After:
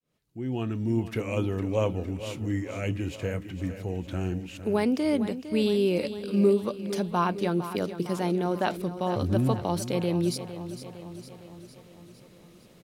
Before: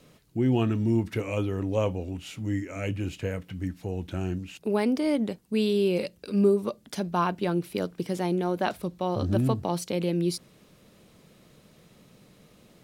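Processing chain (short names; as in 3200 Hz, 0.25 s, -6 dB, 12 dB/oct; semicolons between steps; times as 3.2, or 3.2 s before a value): opening faded in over 1.22 s; feedback echo 0.457 s, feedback 58%, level -12 dB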